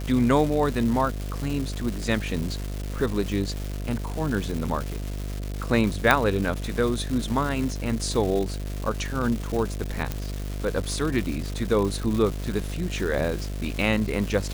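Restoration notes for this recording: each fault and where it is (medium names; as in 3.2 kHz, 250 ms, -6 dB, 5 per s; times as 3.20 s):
buzz 50 Hz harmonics 14 -31 dBFS
crackle 450 per s -29 dBFS
6.11 s: pop -4 dBFS
10.12 s: pop -13 dBFS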